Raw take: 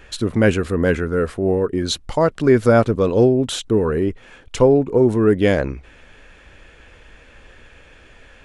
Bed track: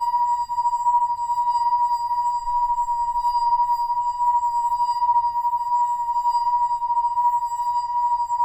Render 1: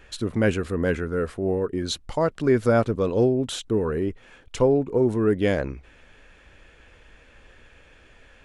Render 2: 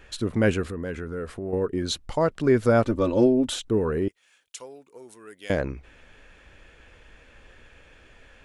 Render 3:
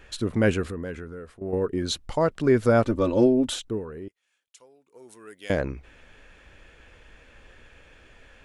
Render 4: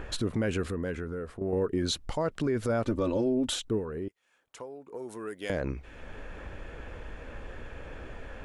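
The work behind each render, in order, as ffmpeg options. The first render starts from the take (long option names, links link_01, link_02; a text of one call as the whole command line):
ffmpeg -i in.wav -af "volume=-6dB" out.wav
ffmpeg -i in.wav -filter_complex "[0:a]asettb=1/sr,asplit=3[link_01][link_02][link_03];[link_01]atrim=end=0.674[link_04];[link_02]atrim=start=0.67:end=1.53,asetpts=PTS-STARTPTS,afade=type=in:duration=0.004:curve=qsin,afade=type=out:start_time=0.856:duration=0.004:curve=qsin,acompressor=threshold=-31dB:ratio=2.5:attack=3.2:release=140:knee=1:detection=peak[link_05];[link_03]atrim=start=1.526[link_06];[link_04][link_05]acrossfade=duration=0.004:curve1=hsin:curve2=qsin[link_07];[link_07][link_06]acrossfade=duration=0.004:curve1=qsin:curve2=hsin,asettb=1/sr,asplit=3[link_08][link_09][link_10];[link_08]atrim=end=2.854[link_11];[link_09]atrim=start=2.85:end=3.54,asetpts=PTS-STARTPTS,afade=type=in:duration=0.004:curve=qsin,afade=type=out:start_time=0.686:duration=0.004:curve=qsin,aecho=1:1:3.4:0.8,atrim=end_sample=30429[link_12];[link_10]atrim=start=3.536[link_13];[link_11][link_12]acrossfade=duration=0.004:curve1=hsin:curve2=qsin[link_14];[link_14][link_13]acrossfade=duration=0.004:curve1=qsin:curve2=hsin,asettb=1/sr,asplit=3[link_15][link_16][link_17];[link_15]atrim=end=4.084[link_18];[link_16]atrim=start=4.08:end=5.5,asetpts=PTS-STARTPTS,afade=type=in:duration=0.004:curve=qsin,afade=type=out:start_time=1.416:duration=0.004:curve=qsin,aderivative[link_19];[link_17]atrim=start=5.496[link_20];[link_18][link_19]acrossfade=duration=0.004:curve1=hsin:curve2=qsin[link_21];[link_21][link_20]acrossfade=duration=0.004:curve1=qsin:curve2=hsin" out.wav
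ffmpeg -i in.wav -filter_complex "[0:a]asplit=4[link_01][link_02][link_03][link_04];[link_01]atrim=end=1.41,asetpts=PTS-STARTPTS,afade=type=out:start_time=0.71:duration=0.7:silence=0.188365[link_05];[link_02]atrim=start=1.41:end=3.86,asetpts=PTS-STARTPTS,afade=type=in:duration=0.004:curve=hsin:silence=0.188365,afade=type=out:start_time=2.11:duration=0.34:silence=0.237137[link_06];[link_03]atrim=start=3.86:end=4.81,asetpts=PTS-STARTPTS,volume=-12.5dB[link_07];[link_04]atrim=start=4.81,asetpts=PTS-STARTPTS,afade=type=in:duration=0.34:silence=0.237137[link_08];[link_05][link_06][link_07][link_08]concat=n=4:v=0:a=1" out.wav
ffmpeg -i in.wav -filter_complex "[0:a]acrossover=split=1400[link_01][link_02];[link_01]acompressor=mode=upward:threshold=-29dB:ratio=2.5[link_03];[link_03][link_02]amix=inputs=2:normalize=0,alimiter=limit=-20dB:level=0:latency=1:release=91" out.wav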